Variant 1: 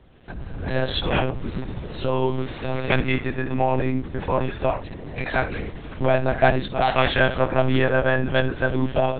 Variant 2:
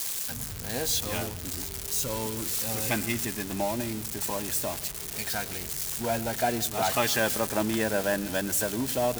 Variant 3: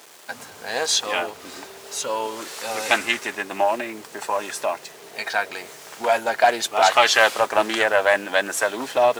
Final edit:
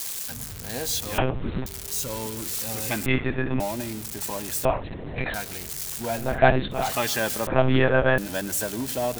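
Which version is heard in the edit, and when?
2
1.18–1.66 s: from 1
3.06–3.60 s: from 1
4.65–5.34 s: from 1
6.27–6.81 s: from 1, crossfade 0.24 s
7.47–8.18 s: from 1
not used: 3

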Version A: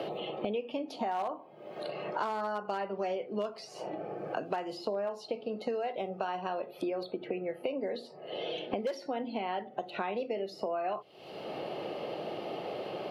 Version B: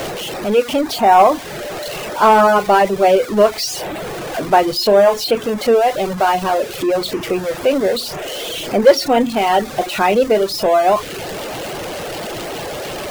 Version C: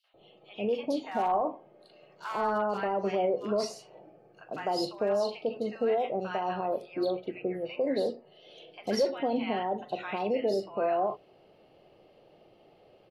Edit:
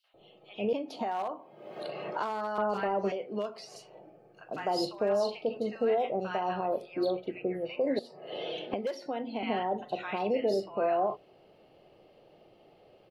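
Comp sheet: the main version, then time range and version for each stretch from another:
C
0.73–2.58 s: from A
3.12–3.76 s: from A
7.99–9.43 s: from A
not used: B

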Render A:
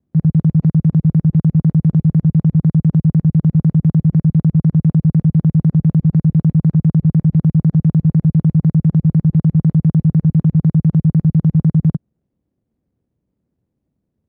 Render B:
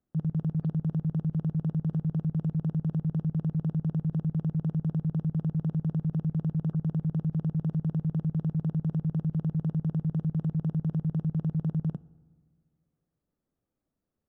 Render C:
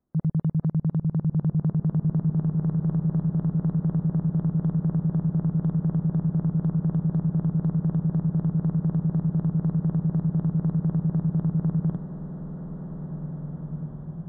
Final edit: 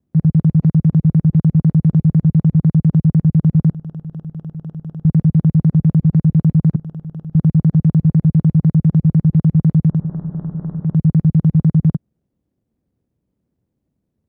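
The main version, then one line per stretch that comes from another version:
A
3.71–5.05 s: from B
6.76–7.35 s: from B
9.98–10.90 s: from C, crossfade 0.24 s

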